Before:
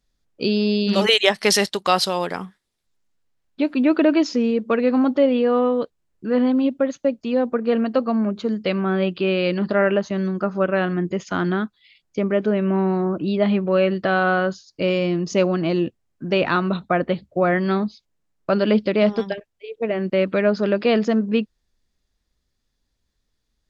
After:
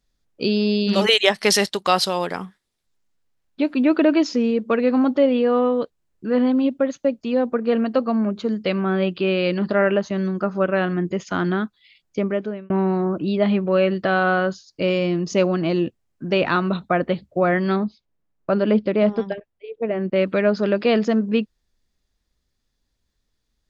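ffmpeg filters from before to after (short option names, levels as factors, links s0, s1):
-filter_complex "[0:a]asettb=1/sr,asplit=3[s0][s1][s2];[s0]atrim=end=17.764[s3];[s1]atrim=start=17.76:end=20.16,asetpts=PTS-STARTPTS,afade=t=in:d=0.004:c=qsin,afade=t=out:st=2.396:d=0.004:c=qsin,lowpass=f=1600:p=1[s4];[s2]atrim=start=20.156[s5];[s3][s4]acrossfade=d=0.004:c1=hsin:c2=qsin[s6];[s6][s5]acrossfade=d=0.004:c1=qsin:c2=hsin,asplit=2[s7][s8];[s7]atrim=end=12.7,asetpts=PTS-STARTPTS,afade=t=out:st=12.2:d=0.5[s9];[s8]atrim=start=12.7,asetpts=PTS-STARTPTS,afade=t=in:d=0.004:c=hsin[s10];[s9][s10]concat=n=2:v=0:a=1"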